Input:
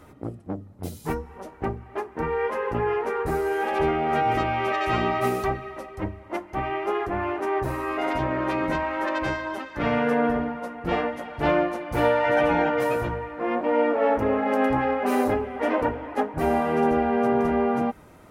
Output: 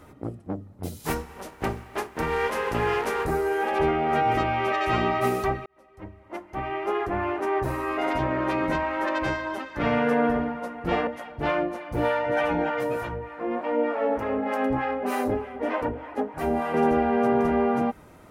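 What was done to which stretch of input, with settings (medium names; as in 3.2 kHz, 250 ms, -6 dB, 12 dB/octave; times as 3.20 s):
0.99–3.25 s: spectral contrast reduction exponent 0.66
5.66–7.02 s: fade in
11.07–16.74 s: harmonic tremolo 3.3 Hz, crossover 620 Hz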